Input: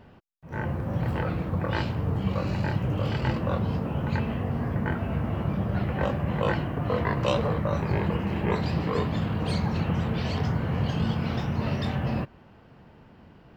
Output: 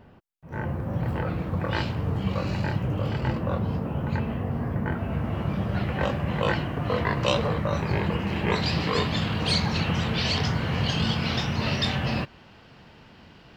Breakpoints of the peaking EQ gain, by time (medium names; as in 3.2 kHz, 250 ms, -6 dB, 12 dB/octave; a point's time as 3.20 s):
peaking EQ 4.5 kHz 2.5 oct
1.20 s -2.5 dB
1.61 s +4 dB
2.55 s +4 dB
3.08 s -3 dB
4.87 s -3 dB
5.60 s +7 dB
8.18 s +7 dB
8.76 s +14 dB